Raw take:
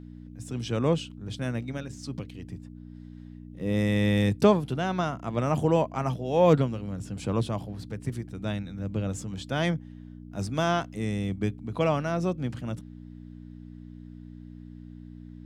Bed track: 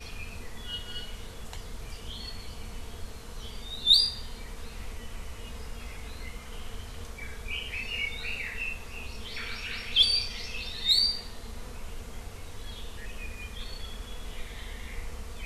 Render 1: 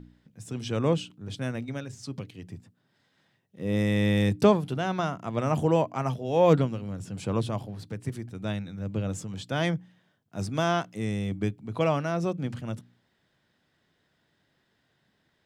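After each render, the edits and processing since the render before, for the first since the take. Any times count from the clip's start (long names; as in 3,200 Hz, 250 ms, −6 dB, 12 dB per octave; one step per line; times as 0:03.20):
hum removal 60 Hz, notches 5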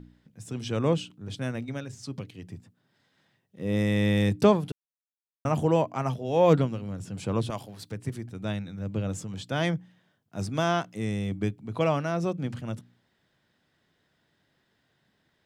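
0:04.72–0:05.45: silence
0:07.50–0:07.92: spectral tilt +2.5 dB per octave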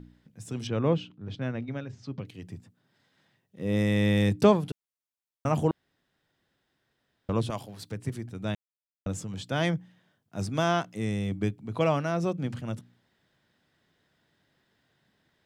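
0:00.67–0:02.25: high-frequency loss of the air 200 metres
0:05.71–0:07.29: fill with room tone
0:08.55–0:09.06: silence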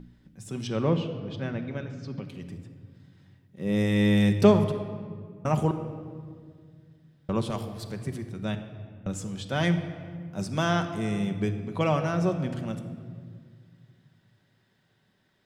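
rectangular room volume 3,200 cubic metres, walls mixed, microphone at 1.1 metres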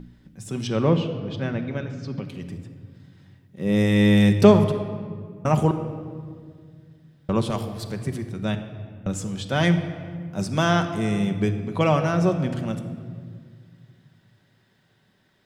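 level +5 dB
brickwall limiter −1 dBFS, peak gain reduction 1 dB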